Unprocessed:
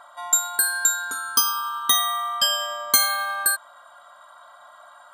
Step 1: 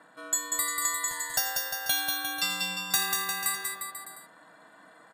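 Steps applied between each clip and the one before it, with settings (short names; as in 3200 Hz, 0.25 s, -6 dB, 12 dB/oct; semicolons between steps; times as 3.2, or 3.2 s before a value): ring modulator 410 Hz; on a send: bouncing-ball echo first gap 0.19 s, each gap 0.85×, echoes 5; on the sum: gain -6 dB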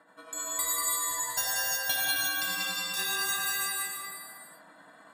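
tremolo 10 Hz, depth 76%; non-linear reverb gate 0.39 s flat, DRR -7 dB; gain -4 dB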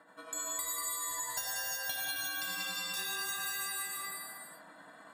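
compressor 4:1, threshold -35 dBFS, peak gain reduction 9.5 dB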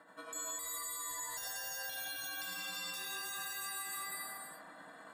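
limiter -33 dBFS, peak gain reduction 10 dB; analogue delay 64 ms, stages 1024, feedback 79%, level -12.5 dB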